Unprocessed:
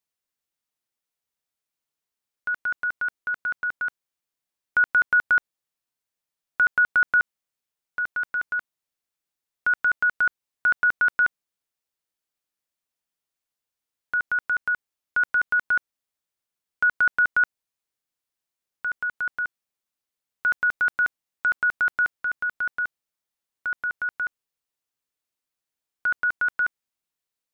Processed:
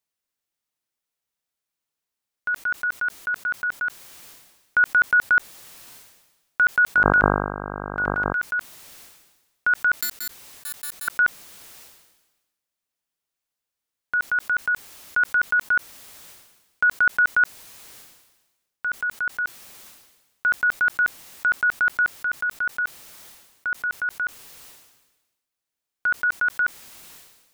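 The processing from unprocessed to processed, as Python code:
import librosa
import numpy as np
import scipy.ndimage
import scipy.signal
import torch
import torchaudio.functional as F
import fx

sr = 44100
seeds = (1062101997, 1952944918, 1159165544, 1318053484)

y = fx.dmg_buzz(x, sr, base_hz=50.0, harmonics=32, level_db=-36.0, tilt_db=-1, odd_only=False, at=(6.95, 8.32), fade=0.02)
y = fx.overflow_wrap(y, sr, gain_db=27.0, at=(9.94, 11.08))
y = fx.sustainer(y, sr, db_per_s=51.0)
y = F.gain(torch.from_numpy(y), 1.5).numpy()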